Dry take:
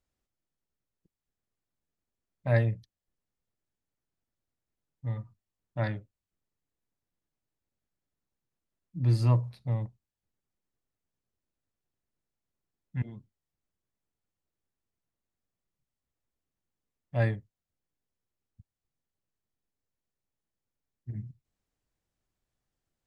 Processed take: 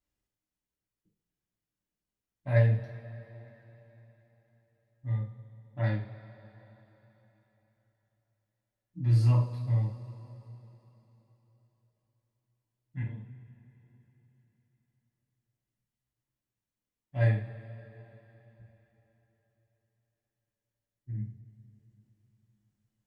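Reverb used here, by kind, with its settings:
coupled-rooms reverb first 0.4 s, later 4 s, from −20 dB, DRR −8 dB
level −10.5 dB

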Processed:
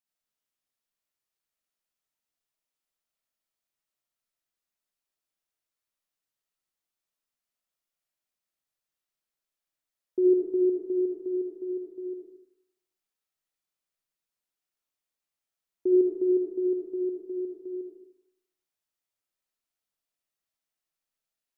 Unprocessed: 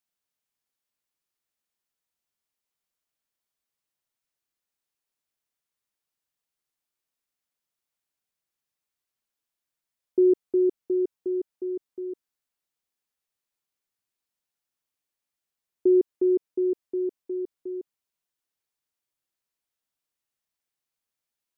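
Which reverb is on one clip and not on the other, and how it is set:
comb and all-pass reverb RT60 0.76 s, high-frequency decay 0.9×, pre-delay 20 ms, DRR −2 dB
level −6 dB

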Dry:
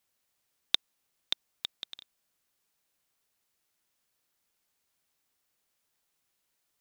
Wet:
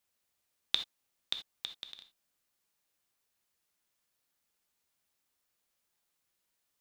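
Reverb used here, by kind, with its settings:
reverb whose tail is shaped and stops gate 100 ms flat, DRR 6.5 dB
level −3.5 dB

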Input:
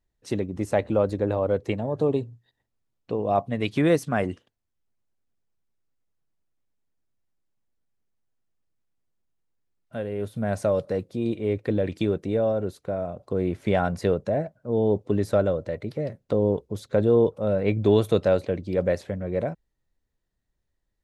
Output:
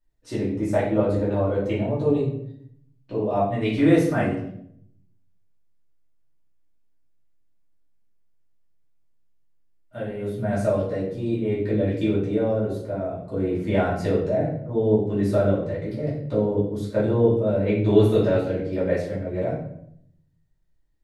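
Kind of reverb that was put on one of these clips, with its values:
rectangular room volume 130 cubic metres, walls mixed, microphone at 2.6 metres
level −9 dB

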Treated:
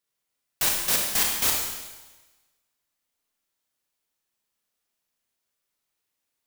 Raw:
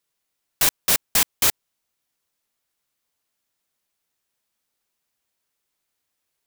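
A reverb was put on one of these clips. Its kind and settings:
four-comb reverb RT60 1.2 s, combs from 26 ms, DRR −0.5 dB
level −6 dB

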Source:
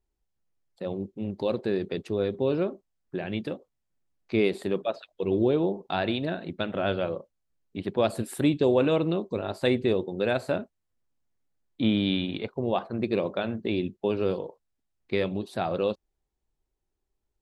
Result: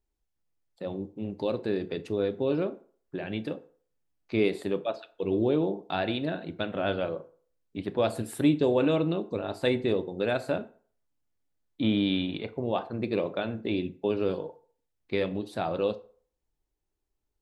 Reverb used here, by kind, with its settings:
feedback delay network reverb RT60 0.48 s, low-frequency decay 0.8×, high-frequency decay 0.65×, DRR 10 dB
level −2 dB

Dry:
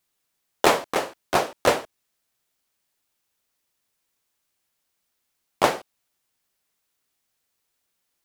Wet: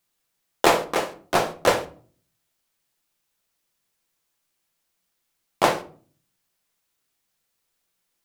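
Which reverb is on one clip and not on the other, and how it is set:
rectangular room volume 380 cubic metres, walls furnished, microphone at 0.75 metres

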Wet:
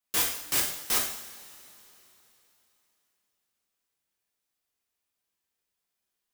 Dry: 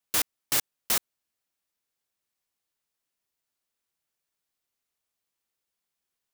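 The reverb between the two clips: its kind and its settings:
coupled-rooms reverb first 0.66 s, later 3.4 s, from −18 dB, DRR −3 dB
level −4 dB

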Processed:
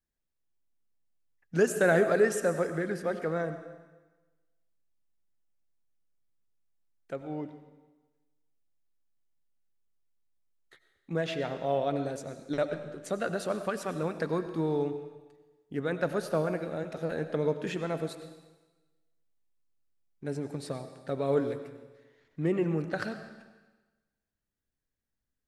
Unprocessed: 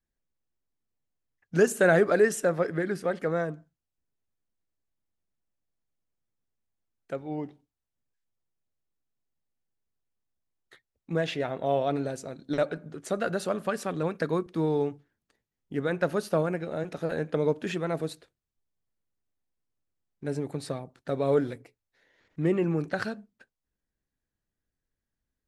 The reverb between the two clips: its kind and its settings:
comb and all-pass reverb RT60 1.2 s, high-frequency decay 1×, pre-delay 55 ms, DRR 9.5 dB
level −3 dB

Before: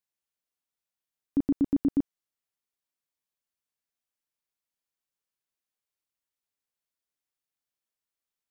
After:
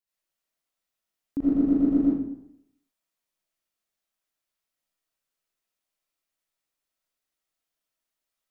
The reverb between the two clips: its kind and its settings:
comb and all-pass reverb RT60 0.75 s, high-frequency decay 0.7×, pre-delay 40 ms, DRR −9 dB
level −3.5 dB

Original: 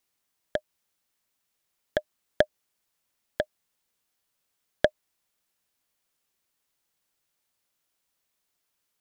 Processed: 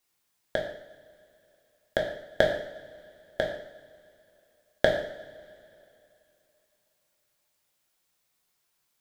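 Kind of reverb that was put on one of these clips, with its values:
coupled-rooms reverb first 0.65 s, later 2.9 s, from −19 dB, DRR −1 dB

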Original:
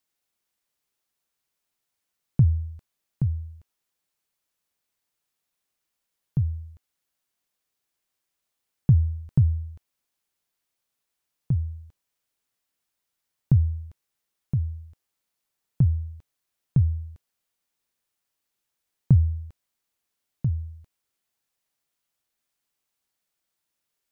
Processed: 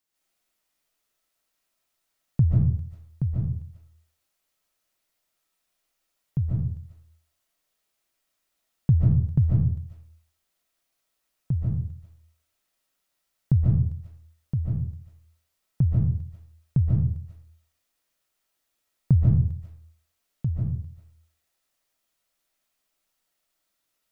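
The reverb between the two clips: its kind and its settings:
comb and all-pass reverb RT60 0.54 s, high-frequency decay 0.65×, pre-delay 105 ms, DRR −6 dB
level −2 dB

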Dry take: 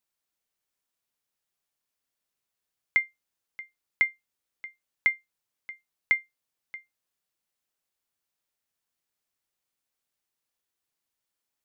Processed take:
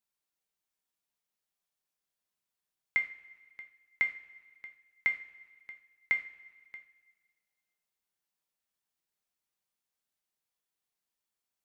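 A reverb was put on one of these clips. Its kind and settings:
coupled-rooms reverb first 0.36 s, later 1.7 s, from −17 dB, DRR 4 dB
level −5.5 dB

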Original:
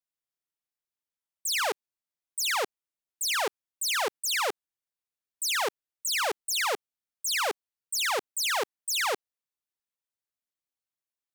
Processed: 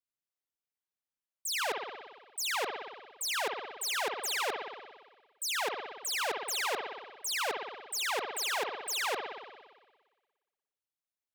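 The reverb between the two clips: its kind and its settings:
spring reverb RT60 1.4 s, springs 58 ms, chirp 60 ms, DRR 3.5 dB
level −5.5 dB

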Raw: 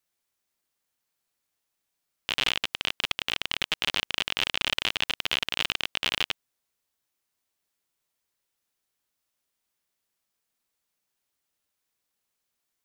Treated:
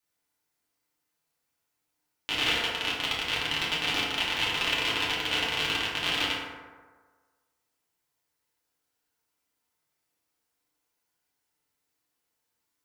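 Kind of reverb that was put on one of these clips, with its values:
feedback delay network reverb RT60 1.5 s, low-frequency decay 0.85×, high-frequency decay 0.4×, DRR −7.5 dB
level −5.5 dB

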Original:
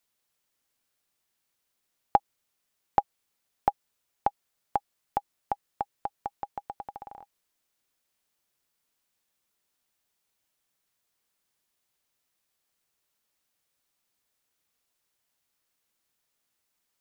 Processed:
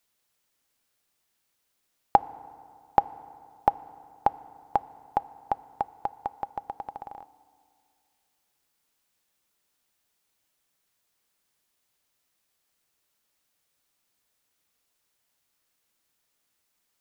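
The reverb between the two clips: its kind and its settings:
feedback delay network reverb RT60 2.3 s, low-frequency decay 1.05×, high-frequency decay 0.6×, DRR 17.5 dB
level +3 dB

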